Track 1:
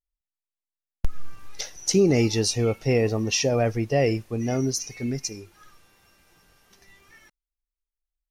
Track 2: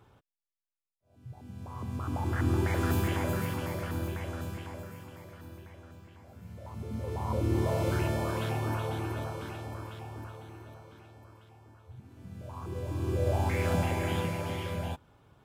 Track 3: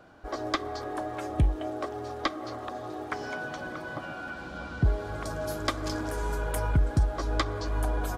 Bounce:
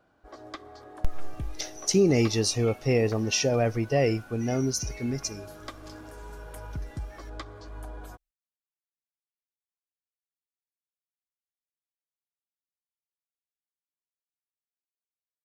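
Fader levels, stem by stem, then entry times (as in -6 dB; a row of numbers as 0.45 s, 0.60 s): -2.0 dB, mute, -12.0 dB; 0.00 s, mute, 0.00 s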